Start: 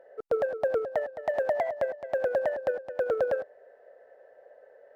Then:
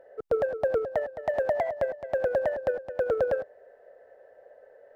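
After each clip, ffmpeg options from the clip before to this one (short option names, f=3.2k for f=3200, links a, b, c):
-af "lowshelf=f=160:g=11.5"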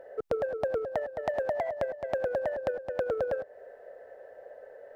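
-af "acompressor=threshold=-35dB:ratio=3,volume=5dB"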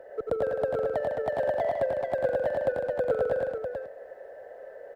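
-filter_complex "[0:a]acrossover=split=110|900[a][b][c];[c]asoftclip=type=tanh:threshold=-37.5dB[d];[a][b][d]amix=inputs=3:normalize=0,aecho=1:1:91|154|436:0.631|0.376|0.531,volume=1.5dB"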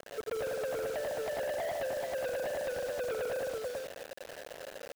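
-af "asoftclip=type=tanh:threshold=-28.5dB,acrusher=bits=6:mix=0:aa=0.000001,volume=-2.5dB"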